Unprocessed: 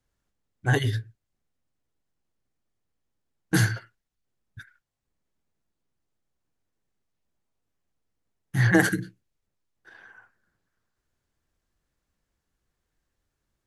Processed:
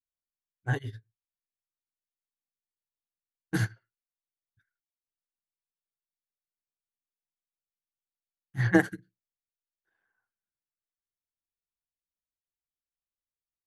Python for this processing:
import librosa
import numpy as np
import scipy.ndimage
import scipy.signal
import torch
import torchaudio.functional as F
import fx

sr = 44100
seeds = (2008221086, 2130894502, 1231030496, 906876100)

y = fx.high_shelf(x, sr, hz=3900.0, db=-7.0)
y = fx.upward_expand(y, sr, threshold_db=-34.0, expansion=2.5)